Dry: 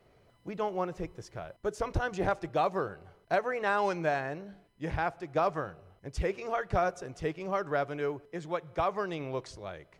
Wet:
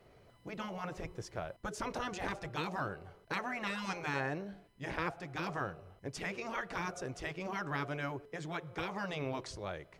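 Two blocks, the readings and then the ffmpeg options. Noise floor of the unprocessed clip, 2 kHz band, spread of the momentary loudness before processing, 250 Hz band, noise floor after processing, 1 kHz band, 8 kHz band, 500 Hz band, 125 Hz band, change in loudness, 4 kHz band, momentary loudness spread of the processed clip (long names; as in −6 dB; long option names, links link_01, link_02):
−64 dBFS, −2.5 dB, 14 LU, −3.5 dB, −63 dBFS, −7.5 dB, +1.5 dB, −10.5 dB, −4.0 dB, −7.0 dB, +1.5 dB, 7 LU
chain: -af "afftfilt=real='re*lt(hypot(re,im),0.1)':imag='im*lt(hypot(re,im),0.1)':win_size=1024:overlap=0.75,volume=1.5dB"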